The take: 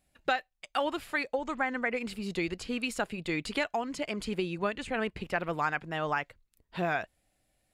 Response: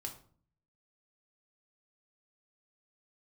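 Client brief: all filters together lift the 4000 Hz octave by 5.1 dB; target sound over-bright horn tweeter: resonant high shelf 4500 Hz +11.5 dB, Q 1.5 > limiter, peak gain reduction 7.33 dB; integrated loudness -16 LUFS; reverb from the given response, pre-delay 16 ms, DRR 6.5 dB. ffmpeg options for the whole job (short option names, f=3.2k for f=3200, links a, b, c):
-filter_complex "[0:a]equalizer=f=4k:t=o:g=4.5,asplit=2[a][b];[1:a]atrim=start_sample=2205,adelay=16[c];[b][c]afir=irnorm=-1:irlink=0,volume=-4.5dB[d];[a][d]amix=inputs=2:normalize=0,highshelf=f=4.5k:t=q:w=1.5:g=11.5,volume=17.5dB,alimiter=limit=-4.5dB:level=0:latency=1"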